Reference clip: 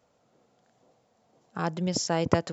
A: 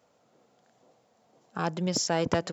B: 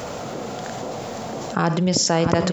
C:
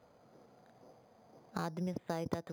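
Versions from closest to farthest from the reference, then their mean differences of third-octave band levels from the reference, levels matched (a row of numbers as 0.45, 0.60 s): A, B, C; 2.5, 3.5, 6.5 dB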